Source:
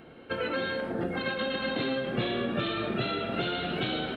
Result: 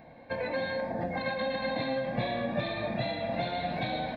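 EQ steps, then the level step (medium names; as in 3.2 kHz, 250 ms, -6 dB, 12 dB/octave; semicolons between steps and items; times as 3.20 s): peaking EQ 540 Hz +7.5 dB 1.5 oct; static phaser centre 2 kHz, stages 8; 0.0 dB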